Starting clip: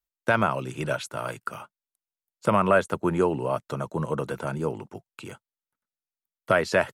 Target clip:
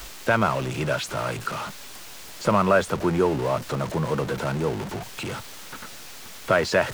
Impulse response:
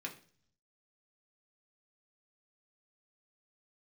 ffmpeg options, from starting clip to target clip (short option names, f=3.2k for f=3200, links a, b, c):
-filter_complex "[0:a]aeval=exprs='val(0)+0.5*0.0422*sgn(val(0))':c=same,acrossover=split=7600[a][b];[b]acompressor=threshold=-46dB:ratio=4:attack=1:release=60[c];[a][c]amix=inputs=2:normalize=0"